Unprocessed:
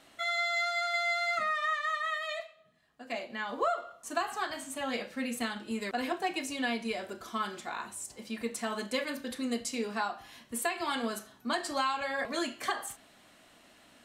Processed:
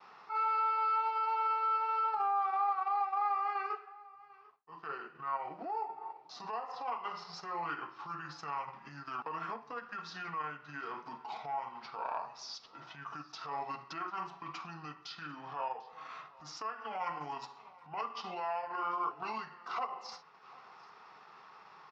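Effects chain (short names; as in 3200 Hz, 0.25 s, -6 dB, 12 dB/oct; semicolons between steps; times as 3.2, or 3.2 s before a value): compressor 6:1, threshold -37 dBFS, peak gain reduction 11.5 dB; band shelf 1600 Hz +11.5 dB 1.1 oct; transient shaper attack -10 dB, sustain -6 dB; wide varispeed 0.641×; steep low-pass 5300 Hz 36 dB/oct; echo 0.745 s -22 dB; expander -56 dBFS; HPF 500 Hz 6 dB/oct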